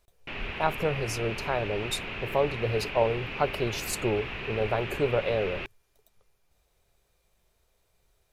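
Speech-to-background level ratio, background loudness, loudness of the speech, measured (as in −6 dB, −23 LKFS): 5.5 dB, −35.5 LKFS, −30.0 LKFS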